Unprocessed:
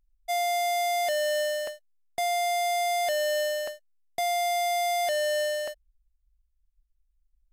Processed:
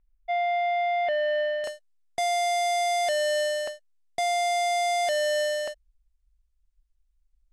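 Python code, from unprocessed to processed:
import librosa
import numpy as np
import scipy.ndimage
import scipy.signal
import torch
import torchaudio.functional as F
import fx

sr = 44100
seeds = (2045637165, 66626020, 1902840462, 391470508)

y = fx.lowpass(x, sr, hz=fx.steps((0.0, 2800.0), (1.64, 10000.0)), slope=24)
y = y * librosa.db_to_amplitude(1.5)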